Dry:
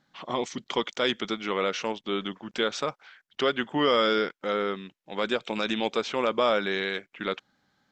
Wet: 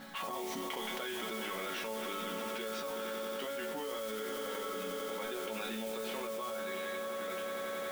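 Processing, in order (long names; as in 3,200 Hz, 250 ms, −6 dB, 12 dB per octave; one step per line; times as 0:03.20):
reversed playback
upward compression, threshold −31 dBFS
reversed playback
bass and treble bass −5 dB, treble −9 dB
resonators tuned to a chord F#3 minor, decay 0.35 s
noise that follows the level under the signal 11 dB
echo that builds up and dies away 90 ms, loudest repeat 5, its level −15 dB
envelope flattener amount 100%
level −6 dB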